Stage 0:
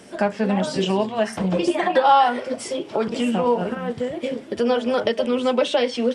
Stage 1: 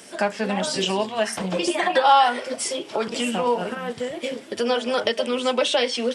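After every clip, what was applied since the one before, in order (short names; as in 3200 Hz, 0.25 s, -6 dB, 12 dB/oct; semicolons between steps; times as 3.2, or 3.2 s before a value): tilt +2.5 dB/oct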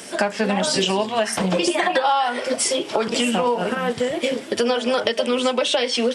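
compressor 6:1, threshold -24 dBFS, peak gain reduction 12.5 dB; gain +7.5 dB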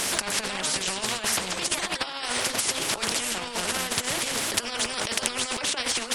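negative-ratio compressor -25 dBFS, ratio -0.5; spectral compressor 4:1; gain +7 dB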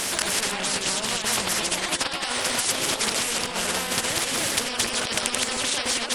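reverse delay 0.204 s, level -1 dB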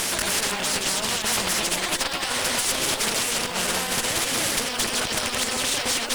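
tube stage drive 23 dB, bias 0.7; bit-crush 8-bit; gain +5.5 dB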